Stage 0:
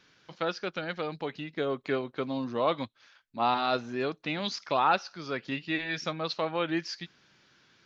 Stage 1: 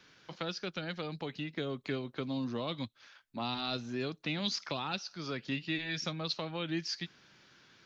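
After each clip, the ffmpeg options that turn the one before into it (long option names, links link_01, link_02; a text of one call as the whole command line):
ffmpeg -i in.wav -filter_complex "[0:a]acrossover=split=250|3000[link_01][link_02][link_03];[link_02]acompressor=threshold=-41dB:ratio=6[link_04];[link_01][link_04][link_03]amix=inputs=3:normalize=0,volume=1.5dB" out.wav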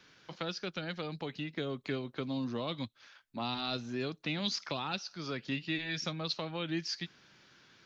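ffmpeg -i in.wav -af anull out.wav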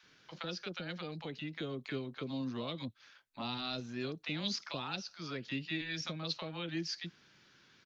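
ffmpeg -i in.wav -filter_complex "[0:a]acrossover=split=720[link_01][link_02];[link_01]adelay=30[link_03];[link_03][link_02]amix=inputs=2:normalize=0,volume=-2.5dB" out.wav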